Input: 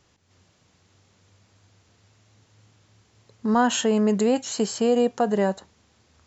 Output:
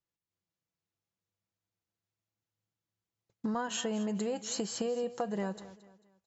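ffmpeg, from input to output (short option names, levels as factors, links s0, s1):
-filter_complex "[0:a]agate=range=0.0224:threshold=0.00316:ratio=16:detection=peak,aecho=1:1:6:0.42,acompressor=threshold=0.0251:ratio=6,asplit=2[s0][s1];[s1]aecho=0:1:222|444|666:0.15|0.0539|0.0194[s2];[s0][s2]amix=inputs=2:normalize=0"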